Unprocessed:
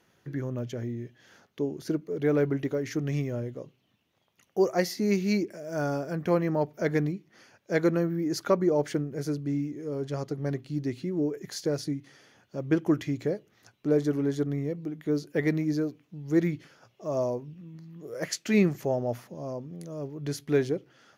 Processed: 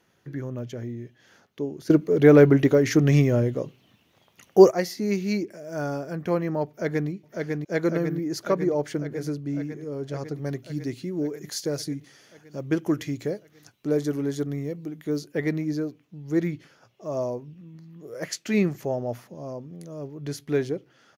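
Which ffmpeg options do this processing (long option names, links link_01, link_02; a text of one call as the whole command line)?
ffmpeg -i in.wav -filter_complex "[0:a]asplit=2[link_01][link_02];[link_02]afade=type=in:start_time=6.68:duration=0.01,afade=type=out:start_time=7.09:duration=0.01,aecho=0:1:550|1100|1650|2200|2750|3300|3850|4400|4950|5500|6050|6600:0.707946|0.530959|0.39822|0.298665|0.223998|0.167999|0.125999|0.0944994|0.0708745|0.0531559|0.0398669|0.0299002[link_03];[link_01][link_03]amix=inputs=2:normalize=0,asettb=1/sr,asplit=3[link_04][link_05][link_06];[link_04]atrim=end=10.354[link_07];[link_05]atrim=start=10.35:end=15.27,asetpts=PTS-STARTPTS,afade=type=in:duration=0.004:curve=qsin,afade=type=out:start_time=4.916:duration=0.004:curve=qsin,highshelf=frequency=4500:gain=8.5[link_08];[link_06]atrim=start=15.266[link_09];[link_07][link_08]acrossfade=duration=0.004:curve1=hsin:curve2=qsin[link_10];[link_10][link_09]acrossfade=duration=0.004:curve1=qsin:curve2=hsin,asplit=3[link_11][link_12][link_13];[link_11]atrim=end=1.902[link_14];[link_12]atrim=start=1.898:end=4.712,asetpts=PTS-STARTPTS,volume=11dB[link_15];[link_13]atrim=start=4.708[link_16];[link_14][link_15]acrossfade=duration=0.004:curve1=hsin:curve2=hsin[link_17];[link_17][link_16]acrossfade=duration=0.004:curve1=hsin:curve2=hsin" out.wav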